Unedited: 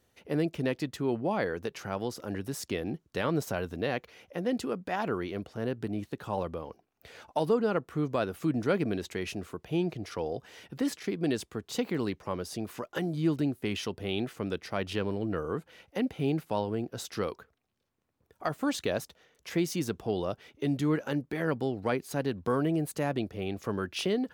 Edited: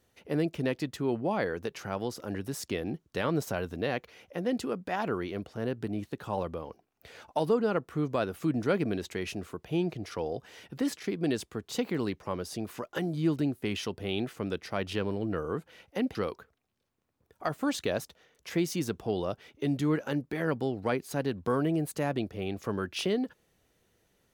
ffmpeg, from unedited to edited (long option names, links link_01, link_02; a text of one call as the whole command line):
ffmpeg -i in.wav -filter_complex "[0:a]asplit=2[link_01][link_02];[link_01]atrim=end=16.152[link_03];[link_02]atrim=start=17.148[link_04];[link_03][link_04]acrossfade=duration=0.004:curve1=hsin:curve2=hsin" out.wav